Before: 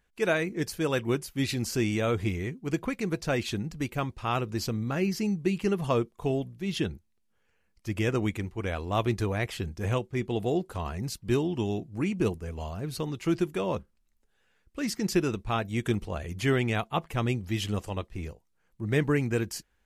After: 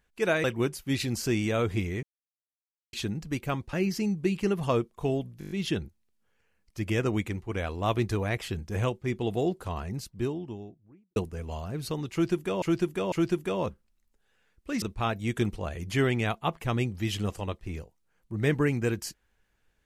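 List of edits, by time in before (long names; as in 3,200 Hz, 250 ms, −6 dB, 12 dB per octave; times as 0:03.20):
0:00.44–0:00.93: remove
0:02.52–0:03.42: silence
0:04.22–0:04.94: remove
0:06.60: stutter 0.02 s, 7 plays
0:10.66–0:12.25: fade out and dull
0:13.21–0:13.71: repeat, 3 plays
0:14.91–0:15.31: remove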